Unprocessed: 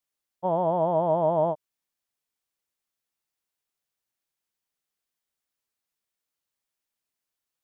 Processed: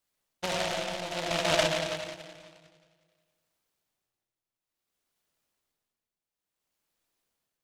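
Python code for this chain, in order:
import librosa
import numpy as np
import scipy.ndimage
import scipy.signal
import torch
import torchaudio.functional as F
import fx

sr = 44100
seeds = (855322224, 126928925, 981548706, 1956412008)

y = fx.over_compress(x, sr, threshold_db=-27.0, ratio=-0.5)
y = y * (1.0 - 0.81 / 2.0 + 0.81 / 2.0 * np.cos(2.0 * np.pi * 0.57 * (np.arange(len(y)) / sr)))
y = fx.echo_feedback(y, sr, ms=203, feedback_pct=49, wet_db=-18)
y = fx.rev_freeverb(y, sr, rt60_s=1.7, hf_ratio=0.35, predelay_ms=25, drr_db=-2.0)
y = fx.noise_mod_delay(y, sr, seeds[0], noise_hz=2400.0, depth_ms=0.18)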